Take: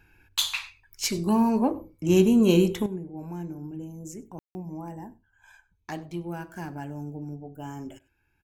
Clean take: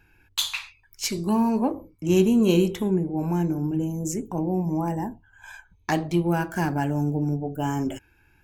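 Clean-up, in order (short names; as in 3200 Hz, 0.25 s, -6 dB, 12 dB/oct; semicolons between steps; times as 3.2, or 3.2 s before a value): room tone fill 4.39–4.55; inverse comb 98 ms -23 dB; gain 0 dB, from 2.86 s +11.5 dB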